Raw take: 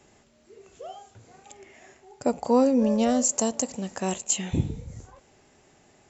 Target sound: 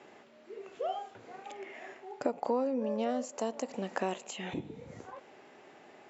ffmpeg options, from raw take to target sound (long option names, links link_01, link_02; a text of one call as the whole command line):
ffmpeg -i in.wav -af "acompressor=threshold=-33dB:ratio=6,highpass=300,lowpass=2900,volume=6dB" out.wav